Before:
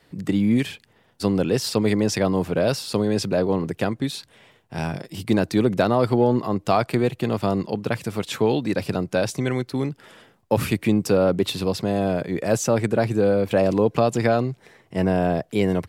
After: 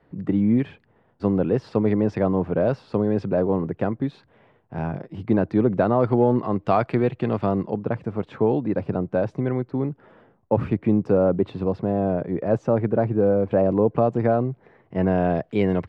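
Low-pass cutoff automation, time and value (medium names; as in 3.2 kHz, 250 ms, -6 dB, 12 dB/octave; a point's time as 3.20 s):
5.74 s 1.3 kHz
6.50 s 2.1 kHz
7.39 s 2.1 kHz
7.84 s 1.1 kHz
14.51 s 1.1 kHz
15.36 s 2.5 kHz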